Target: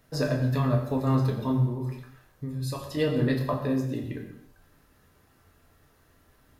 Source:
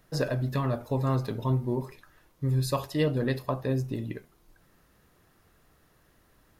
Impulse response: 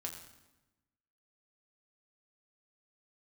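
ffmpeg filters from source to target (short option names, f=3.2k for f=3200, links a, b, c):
-filter_complex "[0:a]asettb=1/sr,asplit=3[a][b][c];[a]atrim=end=1.644[d];[b]atrim=start=1.64:end=2.97,asetpts=PTS-STARTPTS,afade=t=in:d=0.004:c=qsin,afade=t=out:st=1.326:d=0.004:c=qsin,acompressor=threshold=-31dB:ratio=6[e];[c]atrim=start=2.966[f];[d][e]acrossfade=d=0.004:c1=hsin:c2=qsin[g];[g][f]acrossfade=d=0.004:c1=qsin:c2=hsin,asettb=1/sr,asplit=3[h][i][j];[h]atrim=end=3.534[k];[i]atrim=start=3.53:end=4.04,asetpts=PTS-STARTPTS,afade=t=in:d=0.004:c=qsin,afade=t=out:st=0.506:d=0.004:c=qsin,highpass=150[l];[j]atrim=start=4.036[m];[k][l]acrossfade=d=0.004:c1=hsin:c2=qsin[n];[n][m]acrossfade=d=0.004:c1=qsin:c2=hsin[o];[1:a]atrim=start_sample=2205,afade=t=out:st=0.4:d=0.01,atrim=end_sample=18081[p];[o][p]afir=irnorm=-1:irlink=0,volume=3dB"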